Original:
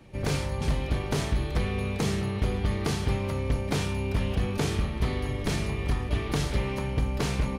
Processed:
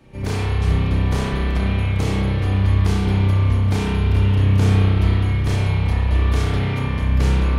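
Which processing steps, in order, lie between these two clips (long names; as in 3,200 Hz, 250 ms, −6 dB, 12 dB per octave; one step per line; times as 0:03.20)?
spring reverb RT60 2.6 s, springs 31 ms, chirp 40 ms, DRR −6 dB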